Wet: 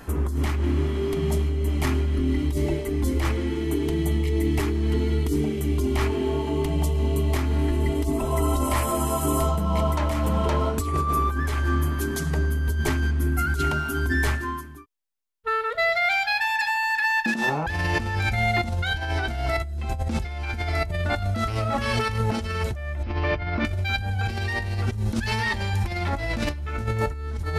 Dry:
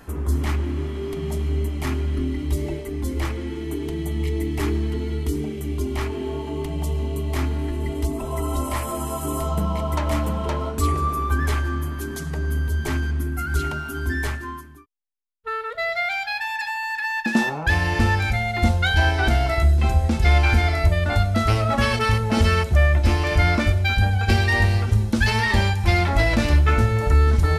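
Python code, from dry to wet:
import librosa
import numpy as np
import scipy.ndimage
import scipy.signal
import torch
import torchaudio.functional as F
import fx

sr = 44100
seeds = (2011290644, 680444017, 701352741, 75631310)

y = fx.gaussian_blur(x, sr, sigma=2.2, at=(23.03, 23.65))
y = fx.over_compress(y, sr, threshold_db=-24.0, ratio=-1.0)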